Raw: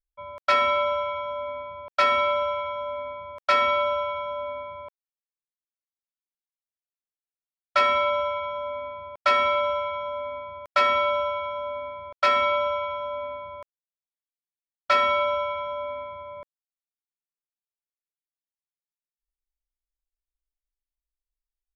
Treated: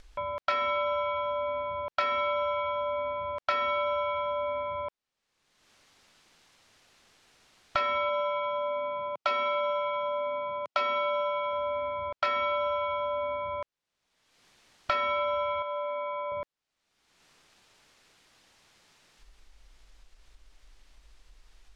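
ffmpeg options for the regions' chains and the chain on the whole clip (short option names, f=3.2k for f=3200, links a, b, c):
-filter_complex "[0:a]asettb=1/sr,asplit=3[a][b][c];[a]atrim=end=8.094[d];[b]atrim=start=8.09:end=11.53,asetpts=PTS-STARTPTS,afade=t=in:d=0.004:c=qsin,afade=t=out:st=3.436:d=0.004:c=qsin,highpass=f=130:w=0.5412,highpass=f=130:w=1.3066,equalizer=f=1.7k:t=o:w=0.26:g=-10.5[e];[c]atrim=start=11.526[f];[d][e]acrossfade=d=0.004:c1=hsin:c2=qsin[g];[g][f]acrossfade=d=0.004:c1=qsin:c2=hsin,asettb=1/sr,asplit=3[h][i][j];[h]atrim=end=15.624[k];[i]atrim=start=15.62:end=16.32,asetpts=PTS-STARTPTS,afade=t=in:d=0.004:c=qsin,afade=t=out:st=0.696:d=0.004:c=qsin,highpass=360,highshelf=f=5.9k:g=-8.5,acompressor=threshold=-35dB:ratio=2.5:attack=3.2:release=140:knee=1:detection=peak[l];[j]atrim=start=16.316[m];[k][l]acrossfade=d=0.004:c1=hsin:c2=qsin[n];[n][m]acrossfade=d=0.004:c1=qsin:c2=hsin,acompressor=mode=upward:threshold=-26dB:ratio=2.5,lowpass=5.2k,acompressor=threshold=-25dB:ratio=6"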